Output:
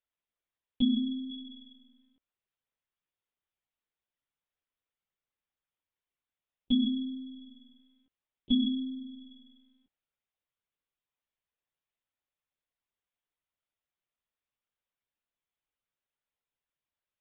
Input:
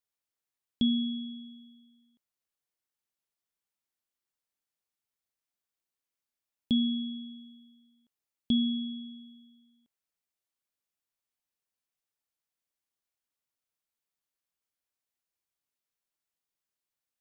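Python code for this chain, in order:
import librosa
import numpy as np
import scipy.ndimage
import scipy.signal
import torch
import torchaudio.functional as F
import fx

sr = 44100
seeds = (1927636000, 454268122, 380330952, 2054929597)

y = fx.high_shelf(x, sr, hz=2400.0, db=8.0, at=(1.3, 1.72))
y = fx.lpc_monotone(y, sr, seeds[0], pitch_hz=260.0, order=16)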